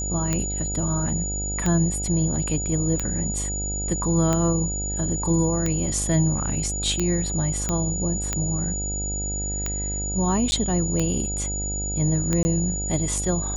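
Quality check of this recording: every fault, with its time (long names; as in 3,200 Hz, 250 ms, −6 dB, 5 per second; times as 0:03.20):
mains buzz 50 Hz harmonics 17 −30 dBFS
scratch tick 45 rpm −10 dBFS
whistle 6,900 Hz −28 dBFS
0:07.69: click −11 dBFS
0:10.51–0:10.52: drop-out 10 ms
0:12.43–0:12.45: drop-out 20 ms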